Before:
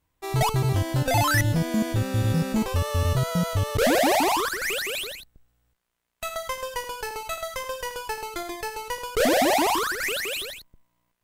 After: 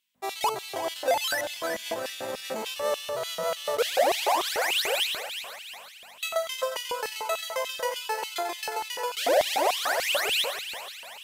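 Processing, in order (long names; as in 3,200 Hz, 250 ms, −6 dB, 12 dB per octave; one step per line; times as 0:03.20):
echo with a time of its own for lows and highs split 720 Hz, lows 148 ms, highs 358 ms, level −10.5 dB
brickwall limiter −19.5 dBFS, peak gain reduction 8.5 dB
mains hum 50 Hz, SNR 20 dB
auto-filter high-pass square 3.4 Hz 560–3,000 Hz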